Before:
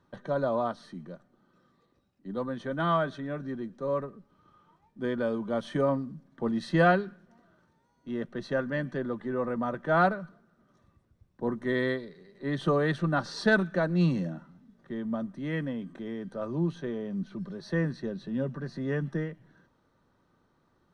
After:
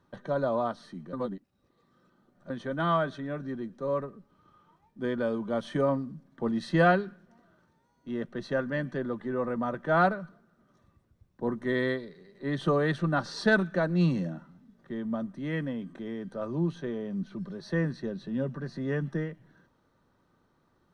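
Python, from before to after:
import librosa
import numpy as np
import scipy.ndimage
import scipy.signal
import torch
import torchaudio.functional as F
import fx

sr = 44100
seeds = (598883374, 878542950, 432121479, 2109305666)

y = fx.edit(x, sr, fx.reverse_span(start_s=1.13, length_s=1.37), tone=tone)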